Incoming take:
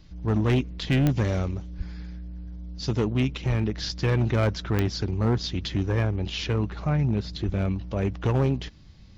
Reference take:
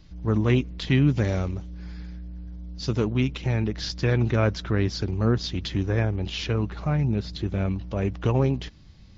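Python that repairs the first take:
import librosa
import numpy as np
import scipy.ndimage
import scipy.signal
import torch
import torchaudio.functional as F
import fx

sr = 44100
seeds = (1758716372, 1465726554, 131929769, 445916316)

y = fx.fix_declip(x, sr, threshold_db=-17.0)
y = fx.fix_declick_ar(y, sr, threshold=10.0)
y = fx.highpass(y, sr, hz=140.0, slope=24, at=(1.77, 1.89), fade=0.02)
y = fx.highpass(y, sr, hz=140.0, slope=24, at=(3.48, 3.6), fade=0.02)
y = fx.highpass(y, sr, hz=140.0, slope=24, at=(7.45, 7.57), fade=0.02)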